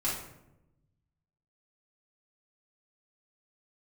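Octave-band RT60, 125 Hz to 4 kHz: 1.7 s, 1.3 s, 1.0 s, 0.75 s, 0.65 s, 0.50 s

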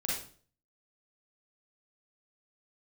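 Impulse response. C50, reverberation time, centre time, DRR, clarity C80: 0.0 dB, 0.45 s, 53 ms, -6.0 dB, 7.0 dB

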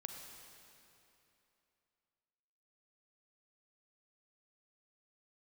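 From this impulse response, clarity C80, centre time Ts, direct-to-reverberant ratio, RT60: 4.5 dB, 78 ms, 3.0 dB, 3.0 s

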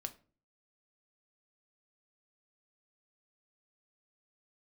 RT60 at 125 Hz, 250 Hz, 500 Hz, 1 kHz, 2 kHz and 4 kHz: 0.60 s, 0.55 s, 0.45 s, 0.35 s, 0.30 s, 0.25 s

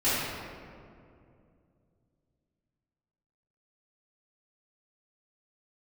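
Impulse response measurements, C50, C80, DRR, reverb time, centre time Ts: -3.5 dB, -1.0 dB, -15.0 dB, 2.4 s, 136 ms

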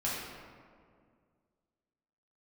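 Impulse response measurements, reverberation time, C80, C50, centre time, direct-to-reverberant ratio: 2.1 s, 1.5 dB, -1.0 dB, 101 ms, -7.5 dB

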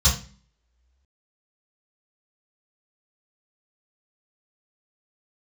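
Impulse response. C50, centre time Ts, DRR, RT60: 7.5 dB, 27 ms, -12.0 dB, 0.40 s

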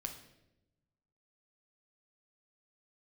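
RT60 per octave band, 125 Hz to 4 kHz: 1.6 s, 1.3 s, 1.1 s, 0.75 s, 0.75 s, 0.70 s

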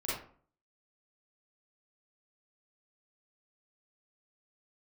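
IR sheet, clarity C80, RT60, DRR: 6.0 dB, 0.45 s, -9.5 dB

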